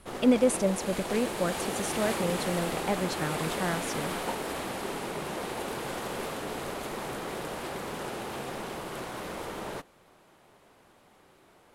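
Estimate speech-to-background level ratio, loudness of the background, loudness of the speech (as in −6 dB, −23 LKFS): 4.5 dB, −34.5 LKFS, −30.0 LKFS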